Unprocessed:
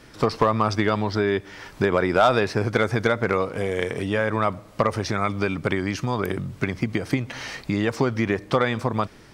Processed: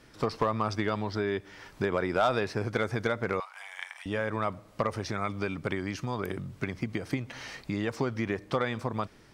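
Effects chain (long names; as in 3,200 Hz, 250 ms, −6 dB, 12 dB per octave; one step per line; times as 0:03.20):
0:03.40–0:04.06: elliptic high-pass filter 810 Hz, stop band 50 dB
level −8 dB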